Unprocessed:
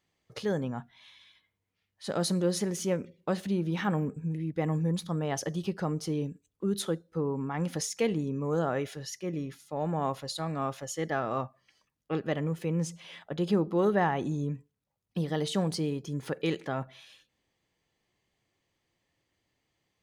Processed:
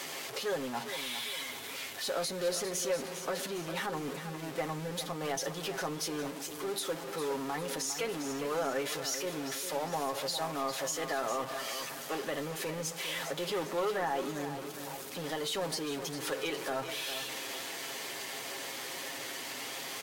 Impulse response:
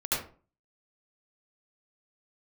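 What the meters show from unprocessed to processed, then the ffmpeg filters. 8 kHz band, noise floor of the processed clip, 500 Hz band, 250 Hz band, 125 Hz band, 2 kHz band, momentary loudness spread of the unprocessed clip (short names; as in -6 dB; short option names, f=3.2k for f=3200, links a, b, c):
+4.0 dB, -43 dBFS, -2.5 dB, -9.0 dB, -13.5 dB, +3.0 dB, 9 LU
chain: -filter_complex "[0:a]aeval=exprs='val(0)+0.5*0.02*sgn(val(0))':c=same,highpass=360,aecho=1:1:7.4:0.48,acrossover=split=550[a][b];[a]asoftclip=type=tanh:threshold=-36.5dB[c];[b]alimiter=level_in=2dB:limit=-24dB:level=0:latency=1:release=133,volume=-2dB[d];[c][d]amix=inputs=2:normalize=0,acrusher=bits=9:mix=0:aa=0.000001,asplit=2[e][f];[f]aecho=0:1:404|808|1212|1616|2020:0.316|0.142|0.064|0.0288|0.013[g];[e][g]amix=inputs=2:normalize=0" -ar 48000 -c:a libvorbis -b:a 64k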